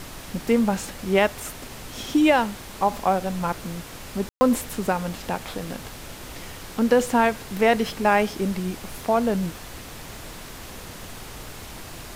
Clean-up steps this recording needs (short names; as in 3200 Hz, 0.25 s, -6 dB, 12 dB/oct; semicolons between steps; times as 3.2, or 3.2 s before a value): de-click; room tone fill 4.29–4.41; noise print and reduce 28 dB